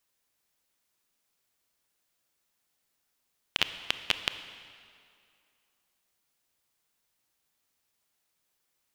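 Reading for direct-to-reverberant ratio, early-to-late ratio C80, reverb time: 10.0 dB, 11.5 dB, 2.4 s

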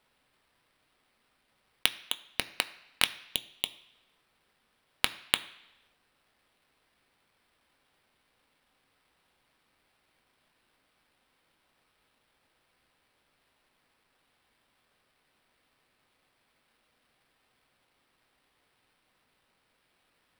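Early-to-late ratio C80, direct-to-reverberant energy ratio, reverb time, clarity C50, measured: 18.5 dB, 9.5 dB, 1.0 s, 16.5 dB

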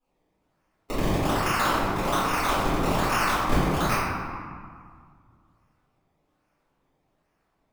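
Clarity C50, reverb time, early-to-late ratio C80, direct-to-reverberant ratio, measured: -3.0 dB, 1.9 s, -0.5 dB, -15.5 dB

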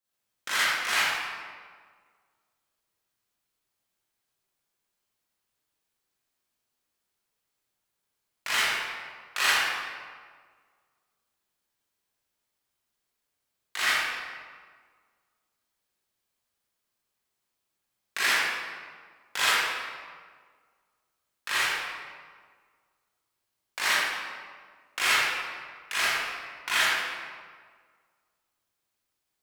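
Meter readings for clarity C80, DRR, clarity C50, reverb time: -1.5 dB, -11.0 dB, -5.5 dB, 1.7 s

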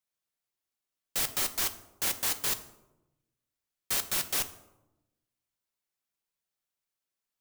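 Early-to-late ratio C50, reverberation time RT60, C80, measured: 14.0 dB, 0.95 s, 16.5 dB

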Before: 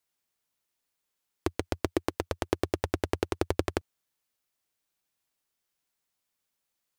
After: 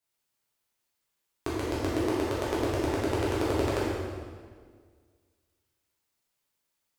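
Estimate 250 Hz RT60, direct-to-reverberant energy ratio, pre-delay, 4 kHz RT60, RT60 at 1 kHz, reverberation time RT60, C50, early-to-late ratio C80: 2.0 s, -8.0 dB, 7 ms, 1.4 s, 1.7 s, 1.8 s, -2.0 dB, 0.0 dB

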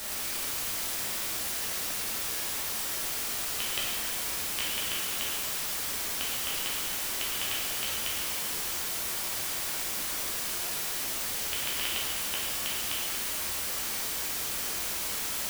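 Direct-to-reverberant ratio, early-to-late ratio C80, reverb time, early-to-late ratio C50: -6.0 dB, 1.0 dB, 1.8 s, -1.0 dB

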